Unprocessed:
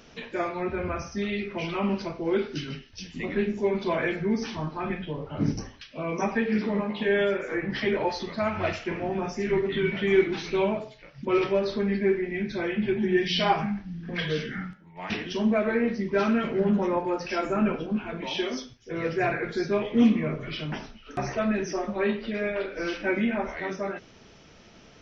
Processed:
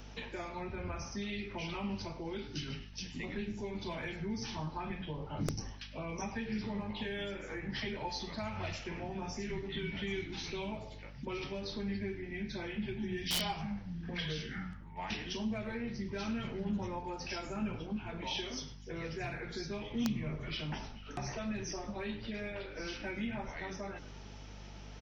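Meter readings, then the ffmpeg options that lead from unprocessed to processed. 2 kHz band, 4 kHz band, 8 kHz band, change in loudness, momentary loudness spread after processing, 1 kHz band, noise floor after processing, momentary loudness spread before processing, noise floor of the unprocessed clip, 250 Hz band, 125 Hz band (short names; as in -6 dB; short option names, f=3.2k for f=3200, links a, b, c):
-11.0 dB, -5.5 dB, n/a, -12.0 dB, 6 LU, -11.5 dB, -49 dBFS, 10 LU, -52 dBFS, -12.0 dB, -7.0 dB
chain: -filter_complex "[0:a]asplit=2[a][b];[b]asplit=3[c][d][e];[c]adelay=103,afreqshift=-100,volume=-18dB[f];[d]adelay=206,afreqshift=-200,volume=-27.4dB[g];[e]adelay=309,afreqshift=-300,volume=-36.7dB[h];[f][g][h]amix=inputs=3:normalize=0[i];[a][i]amix=inputs=2:normalize=0,aeval=exprs='val(0)+0.00562*(sin(2*PI*50*n/s)+sin(2*PI*2*50*n/s)/2+sin(2*PI*3*50*n/s)/3+sin(2*PI*4*50*n/s)/4+sin(2*PI*5*50*n/s)/5)':c=same,highshelf=f=2.6k:g=3.5,acrossover=split=170|3000[j][k][l];[k]acompressor=threshold=-37dB:ratio=6[m];[j][m][l]amix=inputs=3:normalize=0,equalizer=f=860:w=4.8:g=8,aeval=exprs='(mod(9.44*val(0)+1,2)-1)/9.44':c=same,areverse,acompressor=mode=upward:threshold=-39dB:ratio=2.5,areverse,volume=-5dB"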